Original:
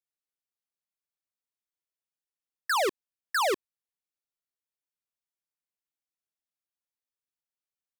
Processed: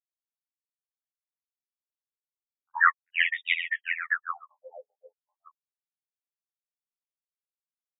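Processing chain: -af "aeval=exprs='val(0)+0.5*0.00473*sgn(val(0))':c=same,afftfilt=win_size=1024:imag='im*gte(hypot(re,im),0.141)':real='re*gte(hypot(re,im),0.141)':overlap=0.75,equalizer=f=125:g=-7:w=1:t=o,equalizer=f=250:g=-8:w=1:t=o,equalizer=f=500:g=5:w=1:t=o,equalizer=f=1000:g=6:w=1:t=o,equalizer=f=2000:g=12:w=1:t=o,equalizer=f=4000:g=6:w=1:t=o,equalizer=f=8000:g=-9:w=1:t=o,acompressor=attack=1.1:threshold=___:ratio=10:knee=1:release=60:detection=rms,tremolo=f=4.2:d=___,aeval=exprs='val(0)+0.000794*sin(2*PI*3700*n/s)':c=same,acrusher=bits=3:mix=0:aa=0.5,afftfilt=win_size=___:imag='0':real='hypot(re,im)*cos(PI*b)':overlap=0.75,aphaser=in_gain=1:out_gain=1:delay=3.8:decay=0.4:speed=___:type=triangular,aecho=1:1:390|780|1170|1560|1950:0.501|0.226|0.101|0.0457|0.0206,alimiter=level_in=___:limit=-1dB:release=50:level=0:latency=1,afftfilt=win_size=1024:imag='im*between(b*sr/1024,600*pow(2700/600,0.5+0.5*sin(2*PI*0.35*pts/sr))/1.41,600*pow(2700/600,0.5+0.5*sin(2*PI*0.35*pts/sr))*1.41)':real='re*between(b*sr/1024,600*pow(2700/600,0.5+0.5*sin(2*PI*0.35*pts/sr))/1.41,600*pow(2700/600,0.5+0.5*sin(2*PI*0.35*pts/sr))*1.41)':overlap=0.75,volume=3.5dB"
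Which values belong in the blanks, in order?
-21dB, 0.76, 2048, 1.9, 15dB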